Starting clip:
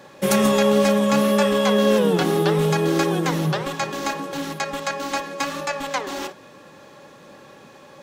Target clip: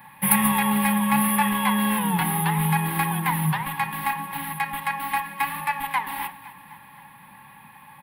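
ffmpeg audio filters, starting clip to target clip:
-af "firequalizer=gain_entry='entry(190,0);entry(370,-21);entry(600,-20);entry(890,10);entry(1300,-7);entry(1900,6);entry(6500,-28);entry(10000,13)':delay=0.05:min_phase=1,aecho=1:1:256|512|768|1024|1280:0.126|0.0743|0.0438|0.0259|0.0153,volume=0.891"

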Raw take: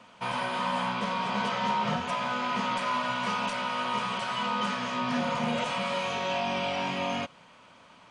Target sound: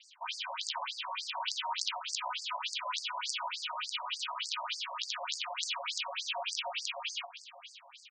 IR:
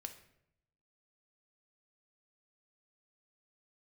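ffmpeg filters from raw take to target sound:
-filter_complex "[0:a]aeval=exprs='(mod(10*val(0)+1,2)-1)/10':c=same,highshelf=f=4500:g=-10.5,asplit=2[s0][s1];[s1]aecho=0:1:519|1038|1557|2076|2595|3114:0.15|0.0883|0.0521|0.0307|0.0181|0.0107[s2];[s0][s2]amix=inputs=2:normalize=0,aexciter=amount=3.7:drive=8.7:freq=2600,asplit=2[s3][s4];[s4]aecho=0:1:179:0.133[s5];[s3][s5]amix=inputs=2:normalize=0,acrusher=bits=7:mix=0:aa=0.000001,afftfilt=real='re*between(b*sr/1024,770*pow(6400/770,0.5+0.5*sin(2*PI*3.4*pts/sr))/1.41,770*pow(6400/770,0.5+0.5*sin(2*PI*3.4*pts/sr))*1.41)':imag='im*between(b*sr/1024,770*pow(6400/770,0.5+0.5*sin(2*PI*3.4*pts/sr))/1.41,770*pow(6400/770,0.5+0.5*sin(2*PI*3.4*pts/sr))*1.41)':win_size=1024:overlap=0.75,volume=0.631"

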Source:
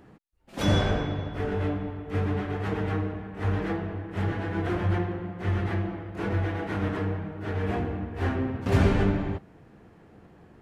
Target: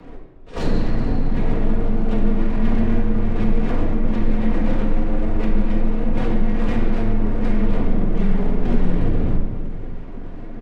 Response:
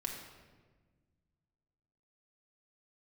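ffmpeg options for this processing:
-filter_complex "[0:a]bass=f=250:g=14,treble=f=4000:g=-9,acompressor=threshold=0.0562:ratio=8,aresample=16000,aeval=exprs='abs(val(0))':c=same,aresample=44100,asplit=4[s0][s1][s2][s3];[s1]adelay=211,afreqshift=-76,volume=0.0794[s4];[s2]adelay=422,afreqshift=-152,volume=0.0367[s5];[s3]adelay=633,afreqshift=-228,volume=0.0168[s6];[s0][s4][s5][s6]amix=inputs=4:normalize=0,asetrate=53981,aresample=44100,atempo=0.816958,acrossover=split=370|630[s7][s8][s9];[s9]aeval=exprs='clip(val(0),-1,0.0112)':c=same[s10];[s7][s8][s10]amix=inputs=3:normalize=0,afreqshift=-21[s11];[1:a]atrim=start_sample=2205[s12];[s11][s12]afir=irnorm=-1:irlink=0,volume=2.66"

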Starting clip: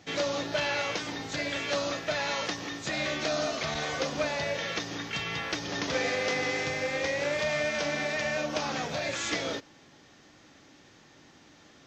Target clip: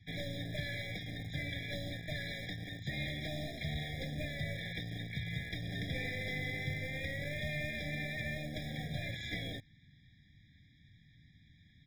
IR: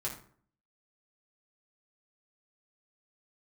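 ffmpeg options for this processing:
-filter_complex "[0:a]firequalizer=gain_entry='entry(100,0);entry(350,-12);entry(3300,-5);entry(6200,-23)':delay=0.05:min_phase=1,acrossover=split=200|1200[s0][s1][s2];[s0]acontrast=29[s3];[s1]acrusher=bits=5:dc=4:mix=0:aa=0.000001[s4];[s3][s4][s2]amix=inputs=3:normalize=0,afftfilt=real='re*eq(mod(floor(b*sr/1024/810),2),0)':imag='im*eq(mod(floor(b*sr/1024/810),2),0)':win_size=1024:overlap=0.75,volume=1.12"

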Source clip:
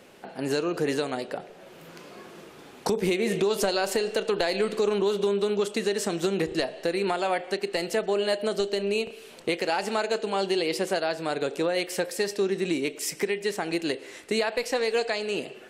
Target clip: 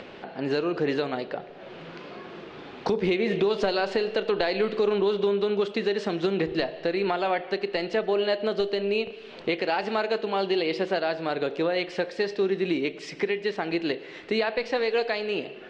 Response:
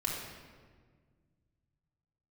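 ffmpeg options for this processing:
-filter_complex "[0:a]lowpass=f=4200:w=0.5412,lowpass=f=4200:w=1.3066,acompressor=mode=upward:threshold=0.0178:ratio=2.5,asplit=2[s0][s1];[1:a]atrim=start_sample=2205[s2];[s1][s2]afir=irnorm=-1:irlink=0,volume=0.0794[s3];[s0][s3]amix=inputs=2:normalize=0"

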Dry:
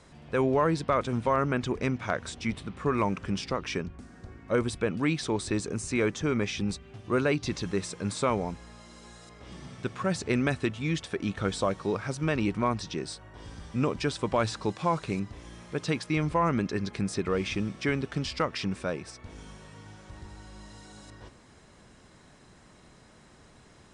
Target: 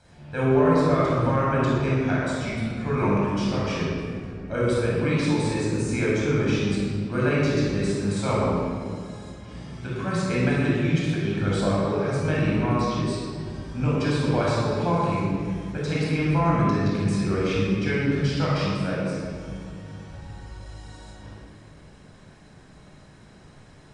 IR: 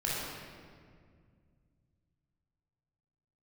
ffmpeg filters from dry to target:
-filter_complex "[1:a]atrim=start_sample=2205[s0];[0:a][s0]afir=irnorm=-1:irlink=0,volume=0.668"

